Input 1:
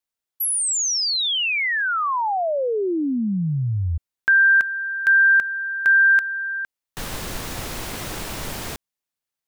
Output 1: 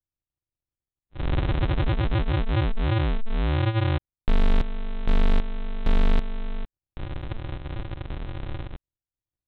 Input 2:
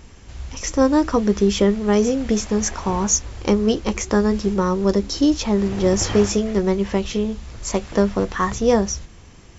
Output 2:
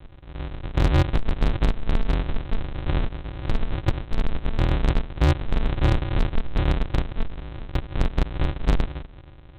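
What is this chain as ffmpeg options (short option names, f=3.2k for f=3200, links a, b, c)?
-af "aresample=8000,acrusher=samples=36:mix=1:aa=0.000001,aresample=44100,asoftclip=type=hard:threshold=-14dB"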